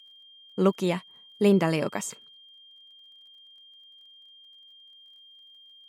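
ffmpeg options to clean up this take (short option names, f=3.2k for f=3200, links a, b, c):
-af "adeclick=t=4,bandreject=f=3.2k:w=30"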